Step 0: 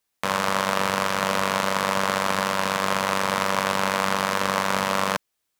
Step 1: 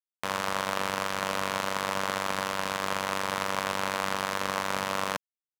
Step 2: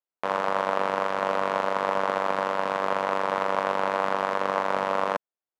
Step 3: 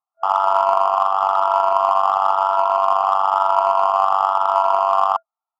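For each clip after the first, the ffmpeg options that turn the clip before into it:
-af "aeval=exprs='sgn(val(0))*max(abs(val(0))-0.02,0)':c=same,volume=-5.5dB"
-af "bandpass=f=600:t=q:w=0.85:csg=0,volume=8dB"
-filter_complex "[0:a]afftfilt=real='re*pow(10,7/40*sin(2*PI*(1.8*log(max(b,1)*sr/1024/100)/log(2)-(1)*(pts-256)/sr)))':imag='im*pow(10,7/40*sin(2*PI*(1.8*log(max(b,1)*sr/1024/100)/log(2)-(1)*(pts-256)/sr)))':win_size=1024:overlap=0.75,afftfilt=real='re*between(b*sr/4096,660,1400)':imag='im*between(b*sr/4096,660,1400)':win_size=4096:overlap=0.75,asplit=2[a][b];[b]asoftclip=type=tanh:threshold=-28dB,volume=-3.5dB[c];[a][c]amix=inputs=2:normalize=0,volume=8.5dB"

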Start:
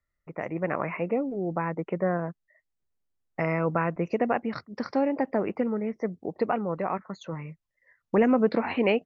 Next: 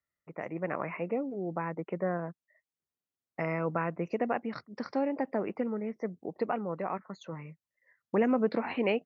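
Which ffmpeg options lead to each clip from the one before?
-af "highpass=120,volume=-5dB"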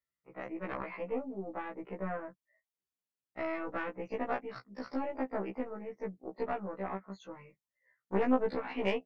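-af "aeval=exprs='(tanh(8.91*val(0)+0.75)-tanh(0.75))/8.91':c=same,afftfilt=real='re*1.73*eq(mod(b,3),0)':imag='im*1.73*eq(mod(b,3),0)':win_size=2048:overlap=0.75,volume=2dB"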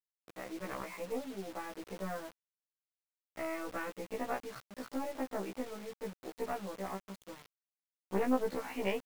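-af "acrusher=bits=7:mix=0:aa=0.000001,volume=-2.5dB"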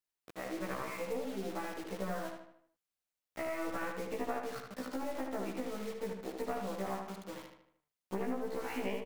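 -filter_complex "[0:a]acompressor=threshold=-36dB:ratio=12,asplit=2[a][b];[b]adelay=76,lowpass=f=3.9k:p=1,volume=-4dB,asplit=2[c][d];[d]adelay=76,lowpass=f=3.9k:p=1,volume=0.48,asplit=2[e][f];[f]adelay=76,lowpass=f=3.9k:p=1,volume=0.48,asplit=2[g][h];[h]adelay=76,lowpass=f=3.9k:p=1,volume=0.48,asplit=2[i][j];[j]adelay=76,lowpass=f=3.9k:p=1,volume=0.48,asplit=2[k][l];[l]adelay=76,lowpass=f=3.9k:p=1,volume=0.48[m];[a][c][e][g][i][k][m]amix=inputs=7:normalize=0,volume=2.5dB"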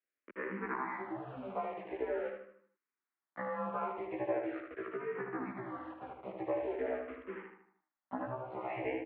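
-filter_complex "[0:a]highpass=f=400:t=q:w=0.5412,highpass=f=400:t=q:w=1.307,lowpass=f=2.5k:t=q:w=0.5176,lowpass=f=2.5k:t=q:w=0.7071,lowpass=f=2.5k:t=q:w=1.932,afreqshift=-130,asplit=2[a][b];[b]afreqshift=-0.43[c];[a][c]amix=inputs=2:normalize=1,volume=6dB"

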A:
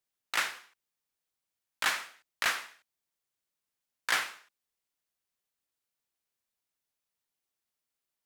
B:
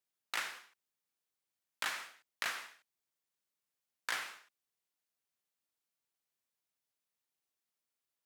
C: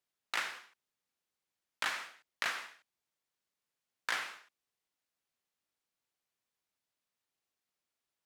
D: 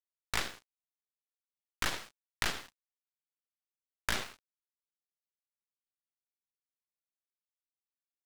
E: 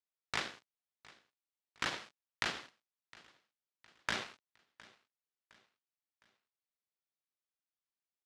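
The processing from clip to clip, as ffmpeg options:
-af "highpass=95,acompressor=threshold=-30dB:ratio=6,volume=-3dB"
-af "highshelf=f=8.3k:g=-9,volume=3dB"
-af "aeval=exprs='0.126*(cos(1*acos(clip(val(0)/0.126,-1,1)))-cos(1*PI/2))+0.0316*(cos(3*acos(clip(val(0)/0.126,-1,1)))-cos(3*PI/2))+0.0141*(cos(8*acos(clip(val(0)/0.126,-1,1)))-cos(8*PI/2))':c=same,acrusher=bits=8:mix=0:aa=0.5,volume=6dB"
-af "highpass=120,lowpass=5.6k,aecho=1:1:711|1422|2133:0.075|0.033|0.0145,volume=-2dB"

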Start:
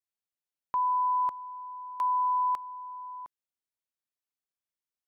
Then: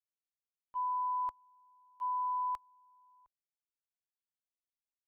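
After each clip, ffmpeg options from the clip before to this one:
-af "agate=range=-17dB:threshold=-28dB:ratio=16:detection=peak,asubboost=boost=11.5:cutoff=73,volume=-6.5dB"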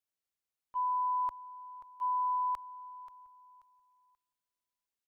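-af "aecho=1:1:533|1066|1599:0.178|0.048|0.013,volume=2.5dB"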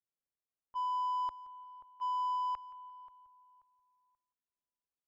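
-af "adynamicsmooth=sensitivity=7:basefreq=1.3k,aecho=1:1:173|346:0.106|0.0297,volume=-2.5dB"

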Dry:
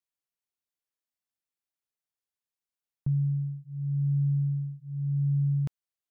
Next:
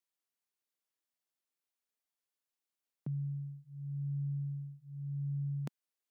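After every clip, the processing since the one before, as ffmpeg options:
-af "highpass=f=190:w=0.5412,highpass=f=190:w=1.3066"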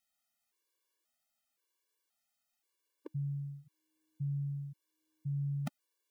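-af "equalizer=f=130:t=o:w=1:g=-10,afftfilt=real='re*gt(sin(2*PI*0.95*pts/sr)*(1-2*mod(floor(b*sr/1024/300),2)),0)':imag='im*gt(sin(2*PI*0.95*pts/sr)*(1-2*mod(floor(b*sr/1024/300),2)),0)':win_size=1024:overlap=0.75,volume=10.5dB"

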